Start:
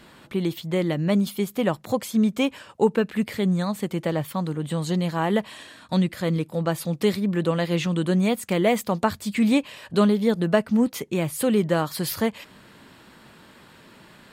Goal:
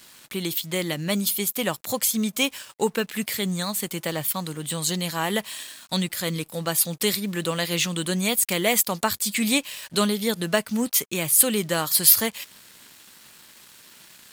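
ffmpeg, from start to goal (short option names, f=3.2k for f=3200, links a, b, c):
-af "aeval=exprs='sgn(val(0))*max(abs(val(0))-0.00211,0)':c=same,crystalizer=i=9:c=0,volume=-5.5dB"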